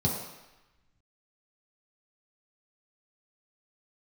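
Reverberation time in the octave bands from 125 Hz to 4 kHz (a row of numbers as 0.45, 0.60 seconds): 0.85, 0.85, 0.95, 1.1, 1.2, 1.0 seconds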